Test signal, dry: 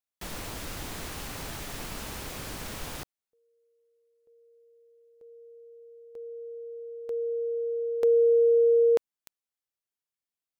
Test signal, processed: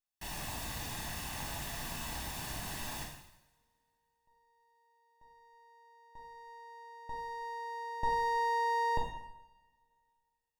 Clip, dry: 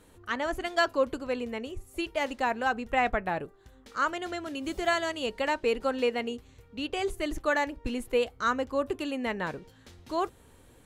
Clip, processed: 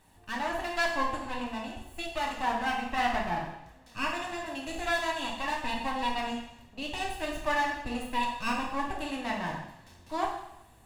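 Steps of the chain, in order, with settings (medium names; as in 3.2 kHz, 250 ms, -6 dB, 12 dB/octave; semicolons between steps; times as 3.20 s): comb filter that takes the minimum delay 1.1 ms; two-slope reverb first 0.83 s, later 2.6 s, from -27 dB, DRR -2 dB; trim -4.5 dB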